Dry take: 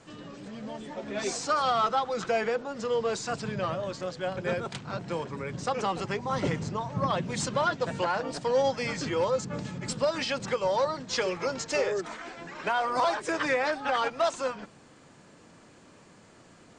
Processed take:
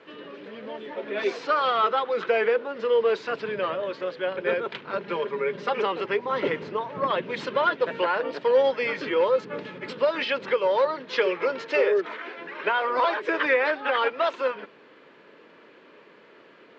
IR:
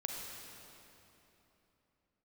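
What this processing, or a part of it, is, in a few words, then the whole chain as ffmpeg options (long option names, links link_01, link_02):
phone earpiece: -filter_complex "[0:a]asettb=1/sr,asplit=3[link_01][link_02][link_03];[link_01]atrim=end=4.934[link_04];[link_02]atrim=start=4.93:end=5.83,asetpts=PTS-STARTPTS,afade=type=in:duration=0.004:curve=qsin,afade=type=out:start_time=0.896:duration=0.004:curve=qsin,aecho=1:1:5:0.73,atrim=end_sample=39690[link_05];[link_03]atrim=start=5.826[link_06];[link_04][link_05]acrossfade=duration=0.004:curve1=hsin:curve2=qsin[link_07];[link_07][link_06]acrossfade=duration=0.004:curve1=qsin:curve2=hsin,highpass=410,equalizer=frequency=420:width_type=q:width=4:gain=6,equalizer=frequency=750:width_type=q:width=4:gain=-10,equalizer=frequency=1200:width_type=q:width=4:gain=-3,lowpass=frequency=3300:width=0.5412,lowpass=frequency=3300:width=1.3066,volume=6.5dB"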